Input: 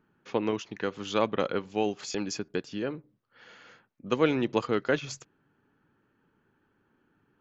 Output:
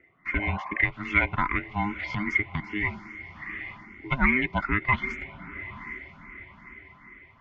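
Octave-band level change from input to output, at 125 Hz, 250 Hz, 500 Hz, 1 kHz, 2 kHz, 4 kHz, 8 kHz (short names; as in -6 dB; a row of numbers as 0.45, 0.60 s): +7.0 dB, -0.5 dB, -11.0 dB, +5.0 dB, +13.0 dB, -5.0 dB, n/a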